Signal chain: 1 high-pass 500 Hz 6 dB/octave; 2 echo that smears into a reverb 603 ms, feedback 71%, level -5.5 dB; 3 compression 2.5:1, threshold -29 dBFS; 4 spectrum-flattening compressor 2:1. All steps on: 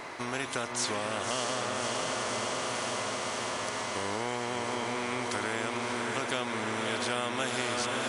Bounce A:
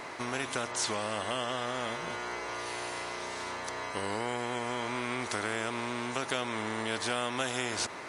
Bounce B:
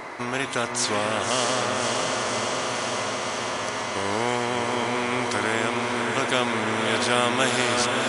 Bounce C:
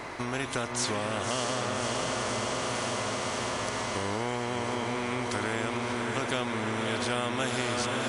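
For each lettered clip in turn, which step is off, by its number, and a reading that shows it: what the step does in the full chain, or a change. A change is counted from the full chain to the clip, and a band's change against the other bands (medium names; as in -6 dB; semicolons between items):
2, momentary loudness spread change +3 LU; 3, mean gain reduction 3.5 dB; 1, crest factor change -1.5 dB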